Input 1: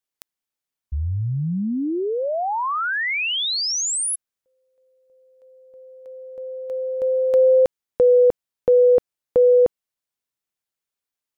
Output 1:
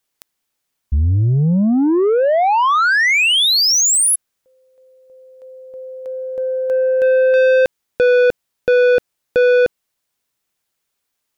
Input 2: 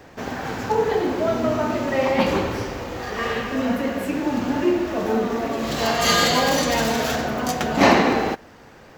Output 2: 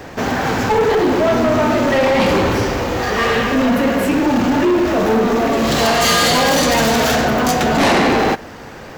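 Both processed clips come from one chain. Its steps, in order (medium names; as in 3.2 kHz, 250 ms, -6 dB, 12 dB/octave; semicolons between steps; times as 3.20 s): in parallel at -1.5 dB: peak limiter -14 dBFS; on the sum: saturation -17.5 dBFS; trim +7 dB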